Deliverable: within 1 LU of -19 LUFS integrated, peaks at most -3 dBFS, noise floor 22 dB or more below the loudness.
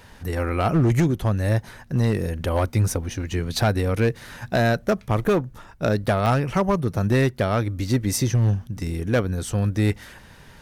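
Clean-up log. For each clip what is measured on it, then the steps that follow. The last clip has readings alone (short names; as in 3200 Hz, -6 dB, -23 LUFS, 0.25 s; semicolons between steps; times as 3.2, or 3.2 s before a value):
clipped 1.4%; flat tops at -13.5 dBFS; dropouts 1; longest dropout 1.2 ms; loudness -23.0 LUFS; peak -13.5 dBFS; loudness target -19.0 LUFS
-> clip repair -13.5 dBFS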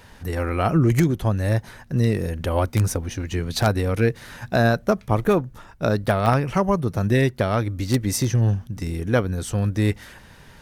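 clipped 0.0%; dropouts 1; longest dropout 1.2 ms
-> interpolate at 6.26, 1.2 ms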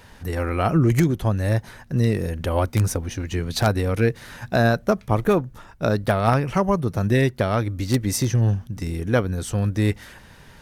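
dropouts 0; loudness -22.5 LUFS; peak -4.5 dBFS; loudness target -19.0 LUFS
-> gain +3.5 dB; limiter -3 dBFS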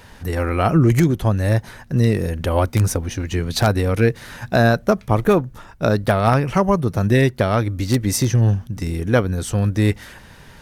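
loudness -19.0 LUFS; peak -3.0 dBFS; noise floor -44 dBFS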